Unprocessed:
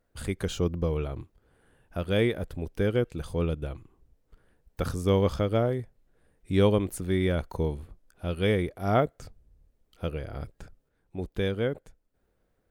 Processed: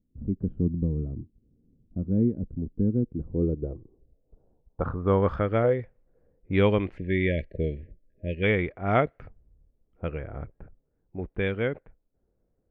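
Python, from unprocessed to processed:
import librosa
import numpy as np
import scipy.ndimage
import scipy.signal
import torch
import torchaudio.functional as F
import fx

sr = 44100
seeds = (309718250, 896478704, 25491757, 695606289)

y = fx.peak_eq(x, sr, hz=510.0, db=10.0, octaves=0.26, at=(5.64, 6.56))
y = fx.env_lowpass(y, sr, base_hz=520.0, full_db=-19.5)
y = fx.spec_erase(y, sr, start_s=6.97, length_s=1.46, low_hz=650.0, high_hz=1600.0)
y = fx.filter_sweep_lowpass(y, sr, from_hz=240.0, to_hz=2300.0, start_s=3.01, end_s=5.79, q=2.4)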